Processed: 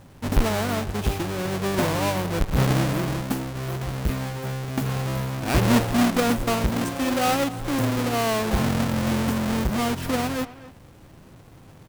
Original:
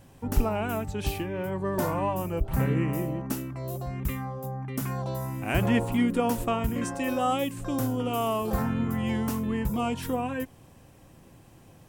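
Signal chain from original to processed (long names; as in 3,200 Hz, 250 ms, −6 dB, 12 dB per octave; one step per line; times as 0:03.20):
each half-wave held at its own peak
far-end echo of a speakerphone 260 ms, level −15 dB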